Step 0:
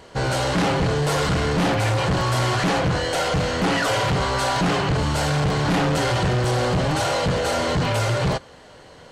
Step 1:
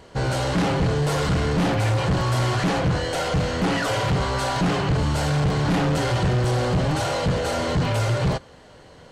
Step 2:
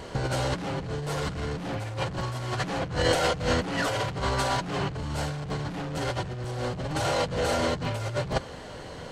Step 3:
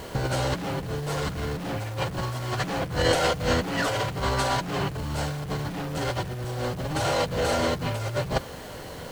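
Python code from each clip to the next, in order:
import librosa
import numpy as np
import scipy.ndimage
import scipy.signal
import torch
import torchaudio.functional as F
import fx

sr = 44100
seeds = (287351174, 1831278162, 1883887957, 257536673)

y1 = fx.low_shelf(x, sr, hz=330.0, db=5.0)
y1 = y1 * 10.0 ** (-3.5 / 20.0)
y2 = fx.over_compress(y1, sr, threshold_db=-27.0, ratio=-0.5)
y3 = fx.quant_dither(y2, sr, seeds[0], bits=8, dither='none')
y3 = y3 * 10.0 ** (1.5 / 20.0)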